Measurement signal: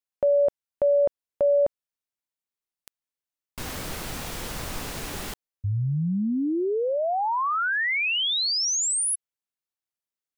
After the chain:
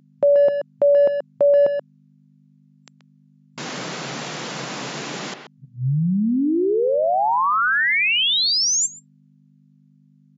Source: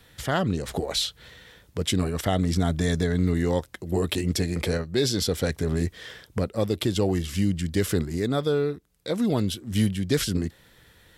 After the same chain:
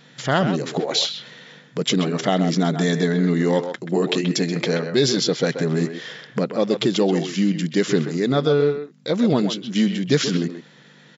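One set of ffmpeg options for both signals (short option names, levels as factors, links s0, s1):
-filter_complex "[0:a]asplit=2[s0][s1];[s1]adelay=130,highpass=300,lowpass=3400,asoftclip=type=hard:threshold=0.112,volume=0.447[s2];[s0][s2]amix=inputs=2:normalize=0,aeval=exprs='val(0)+0.00282*(sin(2*PI*50*n/s)+sin(2*PI*2*50*n/s)/2+sin(2*PI*3*50*n/s)/3+sin(2*PI*4*50*n/s)/4+sin(2*PI*5*50*n/s)/5)':c=same,afftfilt=real='re*between(b*sr/4096,120,7400)':imag='im*between(b*sr/4096,120,7400)':win_size=4096:overlap=0.75,volume=1.88"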